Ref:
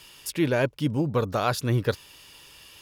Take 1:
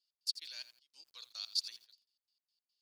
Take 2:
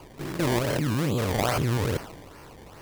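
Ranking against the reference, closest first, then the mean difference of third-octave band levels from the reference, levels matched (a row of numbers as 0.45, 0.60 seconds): 2, 1; 11.5, 17.5 decibels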